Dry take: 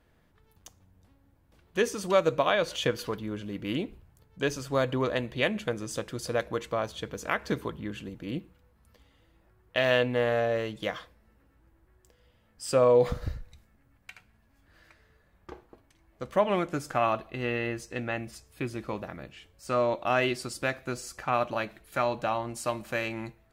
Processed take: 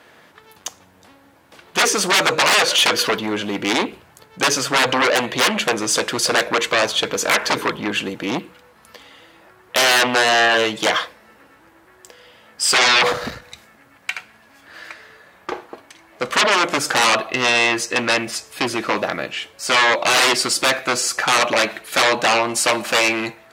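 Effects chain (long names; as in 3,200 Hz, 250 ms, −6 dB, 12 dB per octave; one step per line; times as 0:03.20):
sine wavefolder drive 18 dB, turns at −11 dBFS
meter weighting curve A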